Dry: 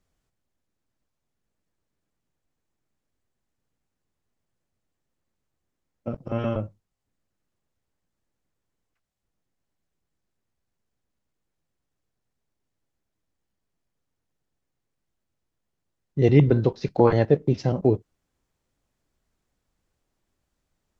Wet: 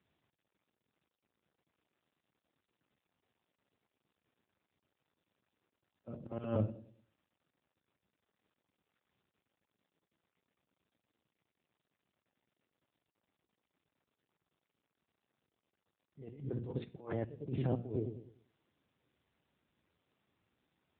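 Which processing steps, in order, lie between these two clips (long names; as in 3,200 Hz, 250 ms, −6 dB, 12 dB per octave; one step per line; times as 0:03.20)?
delay with a low-pass on its return 99 ms, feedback 35%, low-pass 430 Hz, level −15 dB
compressor whose output falls as the input rises −27 dBFS, ratio −1
volume swells 272 ms
hum removal 119.5 Hz, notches 31
level −4.5 dB
AMR narrowband 7.95 kbit/s 8,000 Hz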